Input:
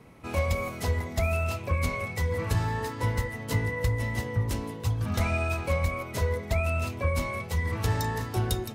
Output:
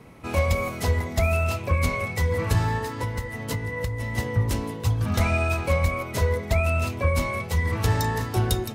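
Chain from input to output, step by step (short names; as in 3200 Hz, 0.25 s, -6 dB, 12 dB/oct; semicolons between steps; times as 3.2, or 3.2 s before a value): 2.77–4.18 compressor 5:1, threshold -30 dBFS, peak gain reduction 9 dB; gain +4.5 dB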